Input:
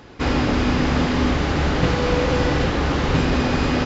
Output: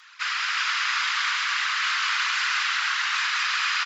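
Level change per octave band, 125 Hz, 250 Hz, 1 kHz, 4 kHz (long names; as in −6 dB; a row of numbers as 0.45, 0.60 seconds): below −40 dB, below −40 dB, −3.0 dB, +4.5 dB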